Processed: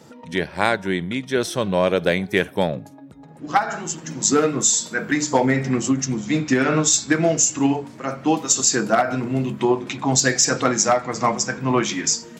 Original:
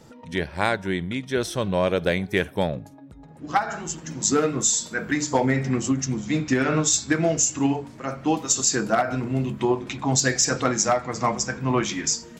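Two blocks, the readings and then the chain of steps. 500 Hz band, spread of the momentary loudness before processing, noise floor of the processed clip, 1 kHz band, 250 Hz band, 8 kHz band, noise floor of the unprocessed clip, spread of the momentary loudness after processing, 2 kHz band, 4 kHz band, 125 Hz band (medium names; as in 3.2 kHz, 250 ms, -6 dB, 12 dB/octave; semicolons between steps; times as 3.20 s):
+3.5 dB, 8 LU, -43 dBFS, +3.5 dB, +3.0 dB, +3.5 dB, -45 dBFS, 8 LU, +3.5 dB, +3.5 dB, +1.0 dB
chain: high-pass 130 Hz 12 dB/octave; trim +3.5 dB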